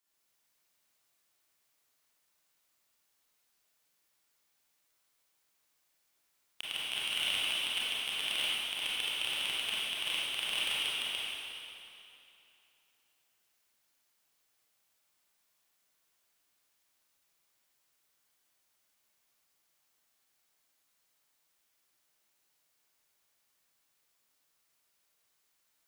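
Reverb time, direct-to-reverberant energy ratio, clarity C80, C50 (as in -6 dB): 2.9 s, -8.5 dB, -2.5 dB, -5.0 dB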